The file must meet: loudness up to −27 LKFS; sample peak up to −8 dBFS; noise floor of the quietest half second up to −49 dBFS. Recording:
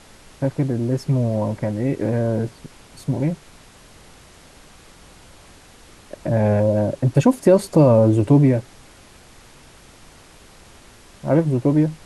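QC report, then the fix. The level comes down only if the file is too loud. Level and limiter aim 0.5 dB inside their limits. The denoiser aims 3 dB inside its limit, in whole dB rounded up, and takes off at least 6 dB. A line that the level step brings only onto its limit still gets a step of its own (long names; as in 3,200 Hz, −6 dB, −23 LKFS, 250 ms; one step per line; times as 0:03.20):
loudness −19.0 LKFS: out of spec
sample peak −3.5 dBFS: out of spec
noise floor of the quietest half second −47 dBFS: out of spec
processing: level −8.5 dB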